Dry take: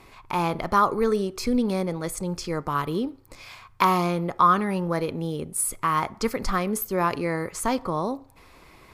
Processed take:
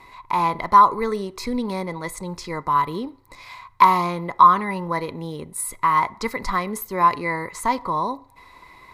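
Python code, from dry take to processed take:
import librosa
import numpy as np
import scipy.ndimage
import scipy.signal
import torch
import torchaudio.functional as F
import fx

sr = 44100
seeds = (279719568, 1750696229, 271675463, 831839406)

y = fx.small_body(x, sr, hz=(1000.0, 2000.0, 3900.0), ring_ms=30, db=16)
y = y * 10.0 ** (-2.5 / 20.0)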